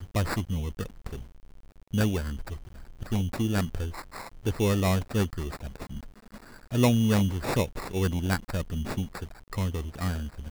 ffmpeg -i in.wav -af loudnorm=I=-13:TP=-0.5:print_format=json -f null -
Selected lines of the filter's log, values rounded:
"input_i" : "-29.6",
"input_tp" : "-9.8",
"input_lra" : "4.1",
"input_thresh" : "-40.4",